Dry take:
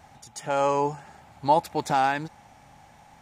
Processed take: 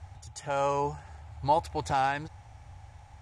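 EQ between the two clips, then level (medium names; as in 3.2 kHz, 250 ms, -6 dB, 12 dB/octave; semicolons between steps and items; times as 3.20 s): low-pass 10 kHz 24 dB/octave; resonant low shelf 130 Hz +13 dB, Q 3; -4.0 dB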